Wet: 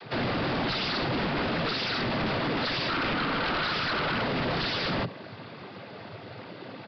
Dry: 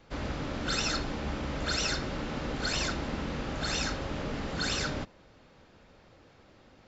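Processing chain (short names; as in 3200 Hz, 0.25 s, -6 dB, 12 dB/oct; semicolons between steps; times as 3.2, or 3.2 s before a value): 2.89–4.21 bell 1300 Hz +14.5 dB 0.36 oct; limiter -29 dBFS, peak gain reduction 14.5 dB; noise vocoder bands 16; sine folder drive 13 dB, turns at -25 dBFS; downsampling 11025 Hz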